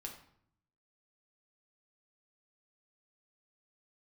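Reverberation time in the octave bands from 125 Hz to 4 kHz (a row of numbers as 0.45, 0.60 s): 1.1, 0.90, 0.65, 0.65, 0.55, 0.45 s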